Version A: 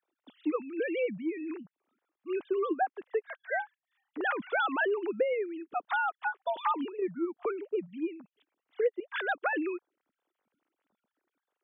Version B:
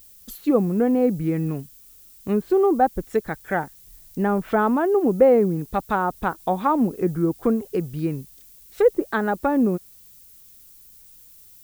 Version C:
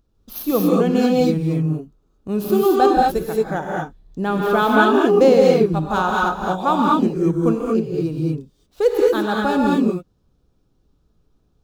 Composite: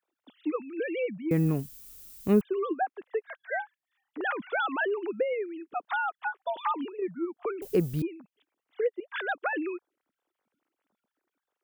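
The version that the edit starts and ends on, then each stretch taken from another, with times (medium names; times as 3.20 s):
A
1.31–2.41 s: from B
7.62–8.02 s: from B
not used: C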